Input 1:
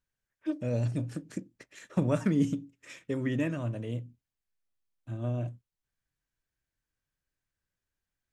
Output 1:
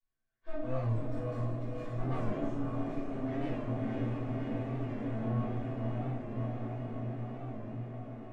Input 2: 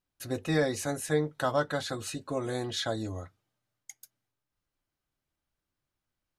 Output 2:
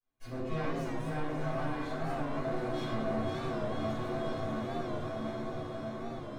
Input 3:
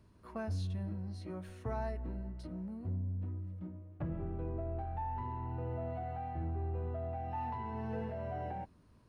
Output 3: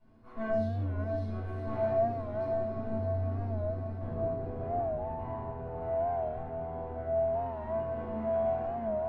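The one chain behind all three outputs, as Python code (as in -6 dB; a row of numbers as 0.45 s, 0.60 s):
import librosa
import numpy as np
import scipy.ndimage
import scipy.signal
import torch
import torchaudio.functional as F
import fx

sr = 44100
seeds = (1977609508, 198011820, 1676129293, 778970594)

y = fx.lower_of_two(x, sr, delay_ms=7.9)
y = fx.low_shelf(y, sr, hz=270.0, db=-5.5)
y = y + 0.34 * np.pad(y, (int(2.8 * sr / 1000.0), 0))[:len(y)]
y = fx.echo_diffused(y, sr, ms=582, feedback_pct=72, wet_db=-5)
y = fx.rider(y, sr, range_db=5, speed_s=2.0)
y = 10.0 ** (-34.5 / 20.0) * np.tanh(y / 10.0 ** (-34.5 / 20.0))
y = fx.lowpass(y, sr, hz=1100.0, slope=6)
y = fx.comb_fb(y, sr, f0_hz=220.0, decay_s=0.54, harmonics='odd', damping=0.0, mix_pct=80)
y = fx.room_shoebox(y, sr, seeds[0], volume_m3=370.0, walls='mixed', distance_m=5.5)
y = fx.record_warp(y, sr, rpm=45.0, depth_cents=100.0)
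y = y * librosa.db_to_amplitude(3.0)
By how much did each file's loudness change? -4.0 LU, -4.5 LU, +7.0 LU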